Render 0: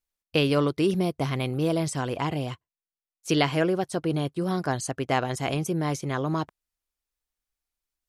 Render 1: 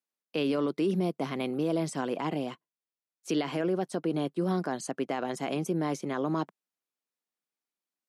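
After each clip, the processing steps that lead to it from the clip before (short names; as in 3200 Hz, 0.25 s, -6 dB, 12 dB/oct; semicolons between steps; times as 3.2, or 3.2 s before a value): steep high-pass 180 Hz 36 dB/oct; tilt -1.5 dB/oct; limiter -17.5 dBFS, peak gain reduction 10.5 dB; gain -2.5 dB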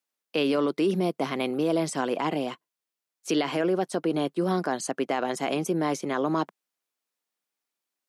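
low shelf 180 Hz -10.5 dB; gain +6 dB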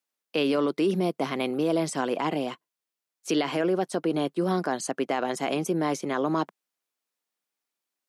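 nothing audible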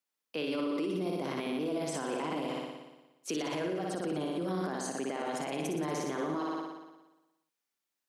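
bell 700 Hz -3 dB 0.21 oct; flutter echo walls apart 10.1 m, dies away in 1.1 s; limiter -22 dBFS, peak gain reduction 11.5 dB; gain -4 dB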